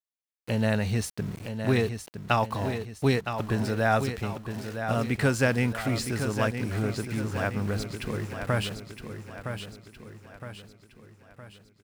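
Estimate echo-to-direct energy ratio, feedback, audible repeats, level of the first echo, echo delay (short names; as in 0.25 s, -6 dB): -7.0 dB, 48%, 5, -8.0 dB, 0.964 s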